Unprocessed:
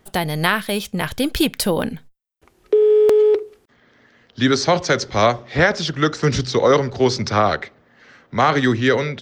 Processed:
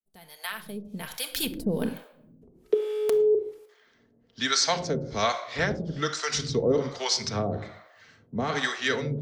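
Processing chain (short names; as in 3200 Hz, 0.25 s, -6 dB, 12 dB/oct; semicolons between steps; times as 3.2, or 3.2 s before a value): opening faded in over 1.87 s; 1.81–2.74 bell 370 Hz +8.5 dB 1.6 oct; shoebox room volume 2700 m³, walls furnished, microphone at 1.6 m; harmonic tremolo 1.2 Hz, depth 100%, crossover 590 Hz; high shelf 4200 Hz +11.5 dB; gain -6.5 dB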